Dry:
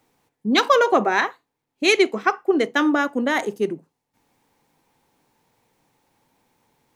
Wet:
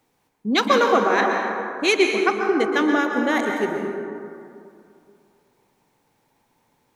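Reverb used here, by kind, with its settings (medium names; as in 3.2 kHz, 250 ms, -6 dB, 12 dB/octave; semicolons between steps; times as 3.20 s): plate-style reverb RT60 2.5 s, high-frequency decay 0.4×, pre-delay 110 ms, DRR 2 dB; trim -2 dB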